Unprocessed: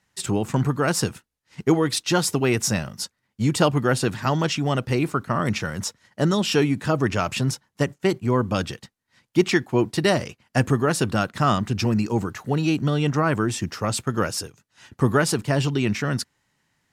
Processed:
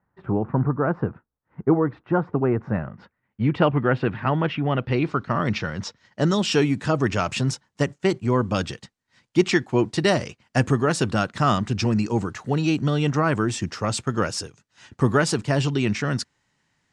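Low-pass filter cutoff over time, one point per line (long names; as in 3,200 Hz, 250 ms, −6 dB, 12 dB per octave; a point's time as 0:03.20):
low-pass filter 24 dB per octave
0:02.57 1,400 Hz
0:03.41 2,700 Hz
0:04.67 2,700 Hz
0:05.16 5,100 Hz
0:05.84 5,100 Hz
0:06.42 8,500 Hz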